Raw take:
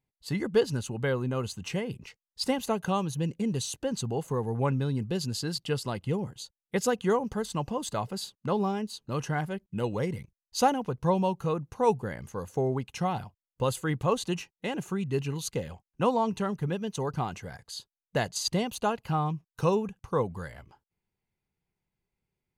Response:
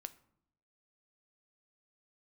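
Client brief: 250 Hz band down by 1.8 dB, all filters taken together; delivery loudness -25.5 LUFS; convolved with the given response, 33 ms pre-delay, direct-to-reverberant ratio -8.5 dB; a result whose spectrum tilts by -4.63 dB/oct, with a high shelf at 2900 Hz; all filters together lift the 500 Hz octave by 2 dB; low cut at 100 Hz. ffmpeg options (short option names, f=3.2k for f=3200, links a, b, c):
-filter_complex "[0:a]highpass=100,equalizer=f=250:t=o:g=-3,equalizer=f=500:t=o:g=3,highshelf=f=2.9k:g=4,asplit=2[a][b];[1:a]atrim=start_sample=2205,adelay=33[c];[b][c]afir=irnorm=-1:irlink=0,volume=13dB[d];[a][d]amix=inputs=2:normalize=0,volume=-5dB"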